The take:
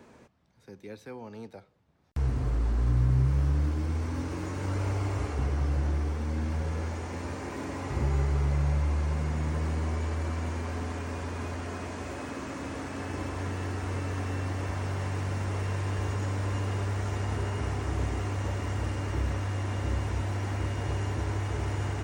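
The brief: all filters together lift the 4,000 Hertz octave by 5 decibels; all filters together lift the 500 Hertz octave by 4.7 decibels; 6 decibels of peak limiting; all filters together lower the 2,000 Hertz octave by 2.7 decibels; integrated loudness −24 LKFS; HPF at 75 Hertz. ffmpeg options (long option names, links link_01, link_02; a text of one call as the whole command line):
ffmpeg -i in.wav -af "highpass=75,equalizer=frequency=500:width_type=o:gain=6,equalizer=frequency=2000:width_type=o:gain=-6,equalizer=frequency=4000:width_type=o:gain=9,volume=8.5dB,alimiter=limit=-13.5dB:level=0:latency=1" out.wav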